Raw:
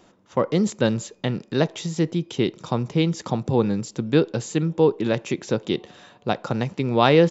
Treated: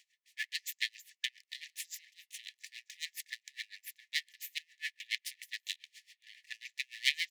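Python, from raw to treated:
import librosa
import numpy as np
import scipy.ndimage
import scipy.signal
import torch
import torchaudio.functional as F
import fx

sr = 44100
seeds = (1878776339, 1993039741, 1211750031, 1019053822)

p1 = np.abs(x)
p2 = fx.brickwall_highpass(p1, sr, low_hz=1700.0)
p3 = p2 + fx.echo_single(p2, sr, ms=1174, db=-23.5, dry=0)
p4 = p3 * 10.0 ** (-27 * (0.5 - 0.5 * np.cos(2.0 * np.pi * 7.2 * np.arange(len(p3)) / sr)) / 20.0)
y = p4 * 10.0 ** (1.5 / 20.0)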